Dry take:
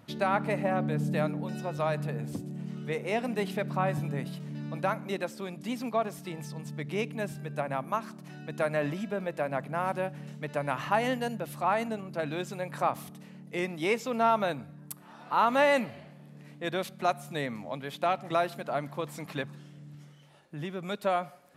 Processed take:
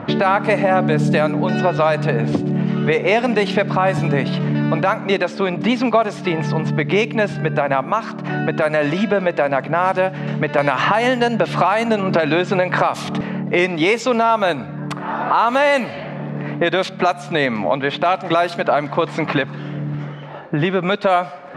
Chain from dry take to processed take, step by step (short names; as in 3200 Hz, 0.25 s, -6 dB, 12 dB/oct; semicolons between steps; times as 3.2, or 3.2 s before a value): low-pass opened by the level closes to 1400 Hz, open at -22.5 dBFS; LPF 8000 Hz 12 dB/oct; low shelf 190 Hz -11.5 dB; compressor 3:1, threshold -47 dBFS, peak gain reduction 19.5 dB; maximiser +34 dB; 10.58–13.21 three-band squash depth 100%; gain -4 dB